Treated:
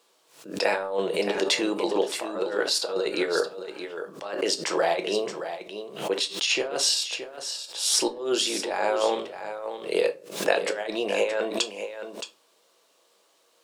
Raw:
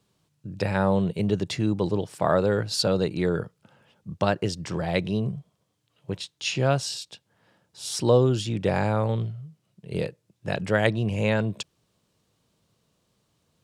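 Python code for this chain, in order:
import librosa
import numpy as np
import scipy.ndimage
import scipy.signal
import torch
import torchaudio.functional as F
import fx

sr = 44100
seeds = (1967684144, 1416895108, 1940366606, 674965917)

y = scipy.signal.sosfilt(scipy.signal.butter(4, 400.0, 'highpass', fs=sr, output='sos'), x)
y = fx.over_compress(y, sr, threshold_db=-30.0, ratio=-0.5)
y = y + 10.0 ** (-10.0 / 20.0) * np.pad(y, (int(621 * sr / 1000.0), 0))[:len(y)]
y = fx.room_shoebox(y, sr, seeds[0], volume_m3=130.0, walls='furnished', distance_m=0.67)
y = fx.pre_swell(y, sr, db_per_s=110.0)
y = y * 10.0 ** (4.5 / 20.0)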